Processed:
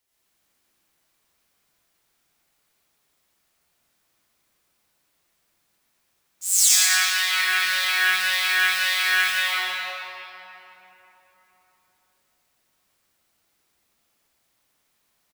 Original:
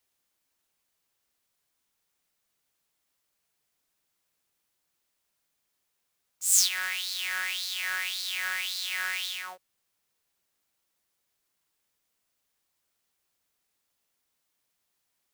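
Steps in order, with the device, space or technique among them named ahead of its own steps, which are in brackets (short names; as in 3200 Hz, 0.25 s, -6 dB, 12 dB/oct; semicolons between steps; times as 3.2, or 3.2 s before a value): 6.44–7.31 steep high-pass 600 Hz 96 dB/oct; cave (echo 0.201 s -10 dB; reverb RT60 3.7 s, pre-delay 74 ms, DRR -10 dB)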